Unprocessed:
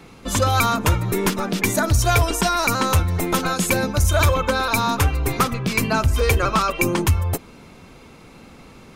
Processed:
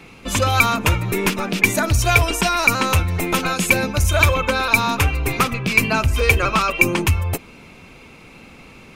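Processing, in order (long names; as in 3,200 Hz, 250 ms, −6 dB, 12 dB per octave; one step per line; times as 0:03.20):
parametric band 2,500 Hz +9.5 dB 0.52 octaves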